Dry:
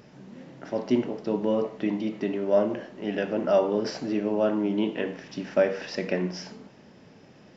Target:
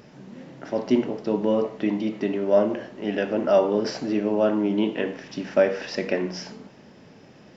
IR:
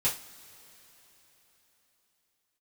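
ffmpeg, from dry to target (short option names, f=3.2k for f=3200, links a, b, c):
-af "bandreject=f=60:t=h:w=6,bandreject=f=120:t=h:w=6,bandreject=f=180:t=h:w=6,volume=3dB"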